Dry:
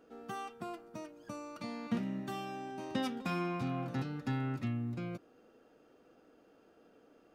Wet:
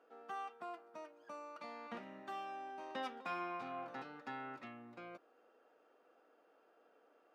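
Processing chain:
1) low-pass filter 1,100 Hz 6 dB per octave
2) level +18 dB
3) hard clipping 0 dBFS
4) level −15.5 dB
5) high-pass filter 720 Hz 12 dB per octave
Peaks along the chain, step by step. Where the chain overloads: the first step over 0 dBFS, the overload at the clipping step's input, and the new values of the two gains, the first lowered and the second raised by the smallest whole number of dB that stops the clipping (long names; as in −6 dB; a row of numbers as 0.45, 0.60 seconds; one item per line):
−23.0, −5.0, −5.0, −20.5, −31.0 dBFS
no step passes full scale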